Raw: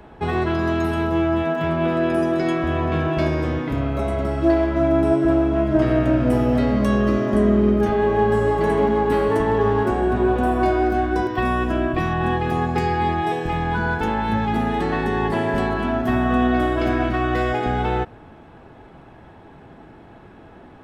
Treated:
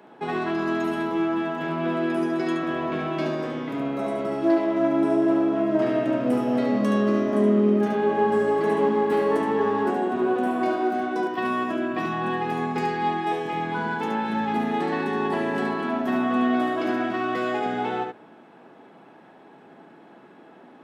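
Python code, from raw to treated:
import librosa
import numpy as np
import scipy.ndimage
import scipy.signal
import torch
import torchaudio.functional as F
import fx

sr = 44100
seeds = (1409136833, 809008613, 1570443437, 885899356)

y = fx.self_delay(x, sr, depth_ms=0.051)
y = scipy.signal.sosfilt(scipy.signal.butter(4, 190.0, 'highpass', fs=sr, output='sos'), y)
y = y + 10.0 ** (-5.0 / 20.0) * np.pad(y, (int(72 * sr / 1000.0), 0))[:len(y)]
y = y * 10.0 ** (-4.5 / 20.0)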